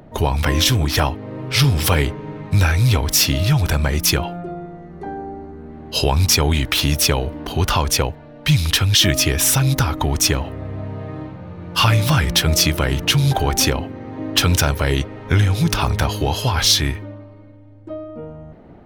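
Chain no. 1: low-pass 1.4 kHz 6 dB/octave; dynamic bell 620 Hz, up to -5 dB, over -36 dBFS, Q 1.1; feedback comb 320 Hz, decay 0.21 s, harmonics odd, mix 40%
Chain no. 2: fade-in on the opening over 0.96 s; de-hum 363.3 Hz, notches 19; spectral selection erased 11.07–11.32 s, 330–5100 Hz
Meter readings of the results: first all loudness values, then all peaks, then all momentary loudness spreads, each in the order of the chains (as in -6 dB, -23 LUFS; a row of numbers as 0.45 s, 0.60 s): -25.0 LUFS, -17.5 LUFS; -11.0 dBFS, -2.0 dBFS; 16 LU, 17 LU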